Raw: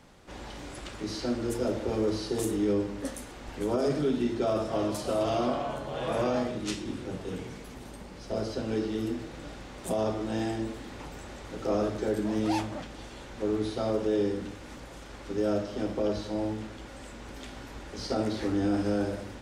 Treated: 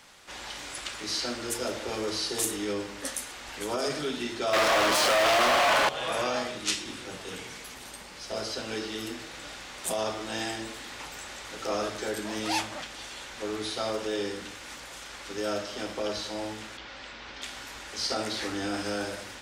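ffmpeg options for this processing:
-filter_complex "[0:a]asettb=1/sr,asplit=3[a][b][c];[a]atrim=end=4.534[d];[b]atrim=start=4.53:end=5.89,asetpts=PTS-STARTPTS,afade=t=in:d=0.004:c=qsin,afade=t=out:st=1.356:d=0.004:c=qsin,asplit=2[e][f];[f]highpass=f=720:p=1,volume=41dB,asoftclip=type=tanh:threshold=-16.5dB[g];[e][g]amix=inputs=2:normalize=0,lowpass=f=1.6k:p=1,volume=-6dB[h];[c]atrim=start=5.886[i];[d][h]acrossfade=d=0.004:c1=hsin:c2=qsin[j];[j][i]acrossfade=d=0.004:c1=qsin:c2=hsin,asettb=1/sr,asplit=3[k][l][m];[k]atrim=end=16.774[n];[l]atrim=start=16.77:end=17.42,asetpts=PTS-STARTPTS,afade=t=in:d=0.004:c=qsin,afade=t=out:st=0.646:d=0.004:c=qsin,lowpass=f=5k:w=0.5412,lowpass=f=5k:w=1.3066[o];[m]atrim=start=17.416[p];[n][o]acrossfade=d=0.004:c1=hsin:c2=qsin[q];[q][p]acrossfade=d=0.004:c1=qsin:c2=hsin,tiltshelf=f=720:g=-10"

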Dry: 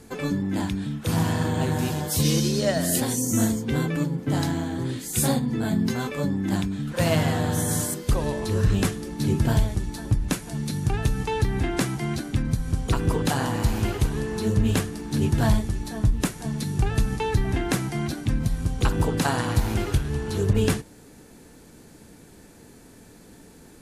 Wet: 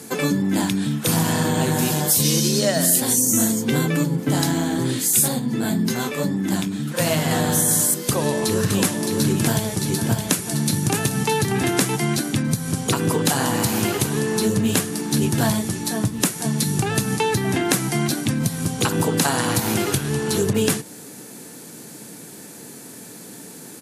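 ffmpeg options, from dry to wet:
-filter_complex "[0:a]asettb=1/sr,asplit=3[a][b][c];[a]atrim=end=5.284[d];[b]atrim=start=5.28:end=7.31,asetpts=PTS-STARTPTS,afade=t=in:d=0.004:c=qsin,afade=t=out:st=2.026:d=0.004:c=qsin,flanger=delay=5.1:depth=9:regen=-61:speed=1.8:shape=triangular[e];[c]atrim=start=7.306[f];[d][e]acrossfade=d=0.004:c1=hsin:c2=qsin[g];[g][f]acrossfade=d=0.004:c1=qsin:c2=hsin,asplit=3[h][i][j];[h]afade=t=out:st=8.63:d=0.02[k];[i]aecho=1:1:616:0.501,afade=t=in:st=8.63:d=0.02,afade=t=out:st=11.95:d=0.02[l];[j]afade=t=in:st=11.95:d=0.02[m];[k][l][m]amix=inputs=3:normalize=0,highpass=f=130:w=0.5412,highpass=f=130:w=1.3066,equalizer=f=13k:t=o:w=1.9:g=10,acompressor=threshold=-25dB:ratio=3,volume=8dB"

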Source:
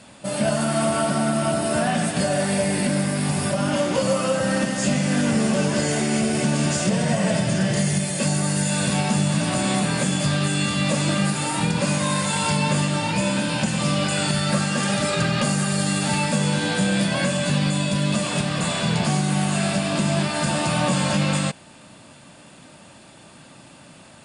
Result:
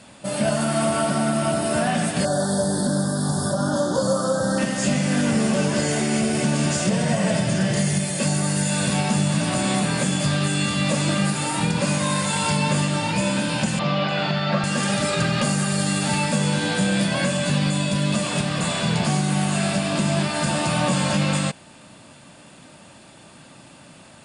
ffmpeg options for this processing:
-filter_complex "[0:a]asettb=1/sr,asplit=3[a][b][c];[a]atrim=end=2.254[d];[b]atrim=start=2.25:end=4.58,asetpts=PTS-STARTPTS,afade=t=in:d=0.004:c=qsin,afade=t=out:st=2.326:d=0.004:c=qsin,asuperstop=centerf=2400:order=8:qfactor=1.3[e];[c]atrim=start=4.576[f];[d][e]acrossfade=d=0.004:c1=hsin:c2=qsin[g];[g][f]acrossfade=d=0.004:c1=qsin:c2=hsin,asettb=1/sr,asplit=3[h][i][j];[h]atrim=end=13.794[k];[i]atrim=start=13.79:end=14.64,asetpts=PTS-STARTPTS,afade=t=in:d=0.004:c=qsin,afade=t=out:st=0.846:d=0.004:c=qsin,highpass=160,equalizer=f=160:t=q:w=4:g=4,equalizer=f=270:t=q:w=4:g=-6,equalizer=f=700:t=q:w=4:g=6,equalizer=f=1.1k:t=q:w=4:g=3,lowpass=f=4.2k:w=0.5412,lowpass=f=4.2k:w=1.3066[l];[j]atrim=start=14.636[m];[k][l]acrossfade=d=0.004:c1=hsin:c2=qsin[n];[n][m]acrossfade=d=0.004:c1=qsin:c2=hsin"

